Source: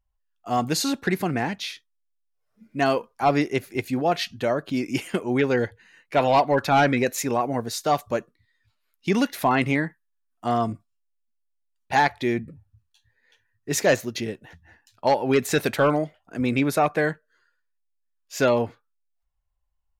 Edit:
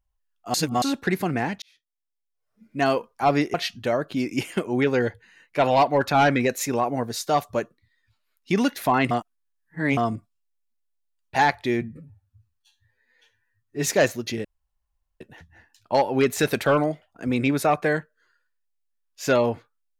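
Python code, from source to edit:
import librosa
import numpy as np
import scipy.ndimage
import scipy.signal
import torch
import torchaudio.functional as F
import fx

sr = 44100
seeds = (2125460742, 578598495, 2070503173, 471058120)

y = fx.edit(x, sr, fx.reverse_span(start_s=0.54, length_s=0.28),
    fx.fade_in_span(start_s=1.62, length_s=1.24),
    fx.cut(start_s=3.54, length_s=0.57),
    fx.reverse_span(start_s=9.68, length_s=0.86),
    fx.stretch_span(start_s=12.38, length_s=1.37, factor=1.5),
    fx.insert_room_tone(at_s=14.33, length_s=0.76), tone=tone)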